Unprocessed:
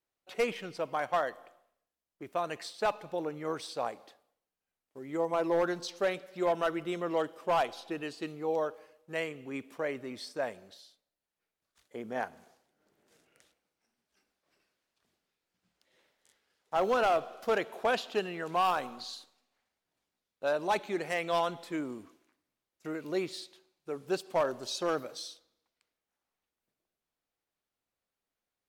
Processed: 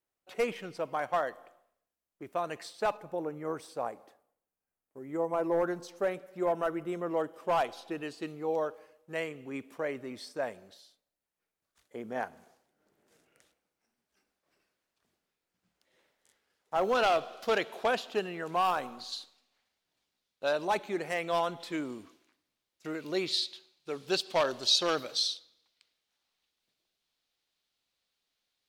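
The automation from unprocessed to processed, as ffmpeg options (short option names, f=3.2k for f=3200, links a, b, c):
-af "asetnsamples=n=441:p=0,asendcmd='2.97 equalizer g -12;7.34 equalizer g -2.5;16.95 equalizer g 7.5;17.88 equalizer g -1.5;19.12 equalizer g 7;20.65 equalizer g -1.5;21.6 equalizer g 7;23.26 equalizer g 14.5',equalizer=f=3.9k:t=o:w=1.5:g=-3.5"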